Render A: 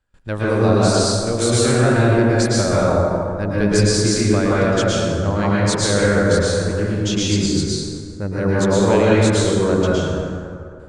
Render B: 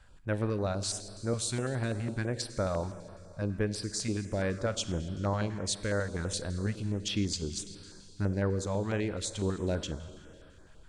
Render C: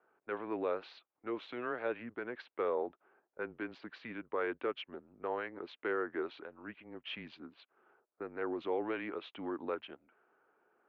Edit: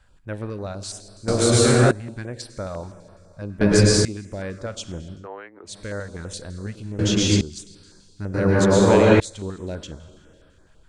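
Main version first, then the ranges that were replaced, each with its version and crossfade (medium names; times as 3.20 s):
B
1.28–1.91 s: from A
3.61–4.05 s: from A
5.20–5.71 s: from C, crossfade 0.16 s
6.99–7.41 s: from A
8.34–9.20 s: from A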